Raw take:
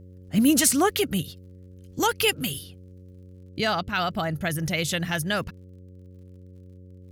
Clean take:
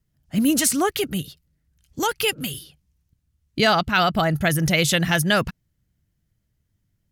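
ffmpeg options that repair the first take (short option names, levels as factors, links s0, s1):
-af "adeclick=t=4,bandreject=f=91.7:t=h:w=4,bandreject=f=183.4:t=h:w=4,bandreject=f=275.1:t=h:w=4,bandreject=f=366.8:t=h:w=4,bandreject=f=458.5:t=h:w=4,bandreject=f=550.2:t=h:w=4,asetnsamples=n=441:p=0,asendcmd='3.37 volume volume 7dB',volume=1"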